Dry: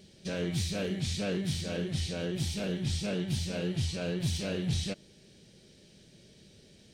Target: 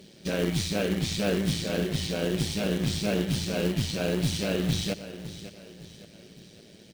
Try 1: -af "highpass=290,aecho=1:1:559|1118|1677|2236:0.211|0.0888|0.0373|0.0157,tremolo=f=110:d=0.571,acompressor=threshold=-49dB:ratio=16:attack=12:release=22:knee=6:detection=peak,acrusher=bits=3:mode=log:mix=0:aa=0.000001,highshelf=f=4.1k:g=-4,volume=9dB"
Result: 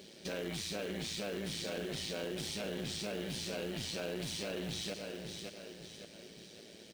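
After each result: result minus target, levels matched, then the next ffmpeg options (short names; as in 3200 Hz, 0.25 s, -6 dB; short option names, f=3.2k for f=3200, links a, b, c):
compressor: peak gain reduction +13.5 dB; 125 Hz band -5.0 dB
-af "highpass=290,aecho=1:1:559|1118|1677|2236:0.211|0.0888|0.0373|0.0157,tremolo=f=110:d=0.571,acrusher=bits=3:mode=log:mix=0:aa=0.000001,highshelf=f=4.1k:g=-4,volume=9dB"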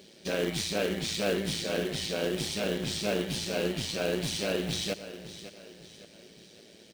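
125 Hz band -6.0 dB
-af "highpass=140,aecho=1:1:559|1118|1677|2236:0.211|0.0888|0.0373|0.0157,tremolo=f=110:d=0.571,acrusher=bits=3:mode=log:mix=0:aa=0.000001,highshelf=f=4.1k:g=-4,volume=9dB"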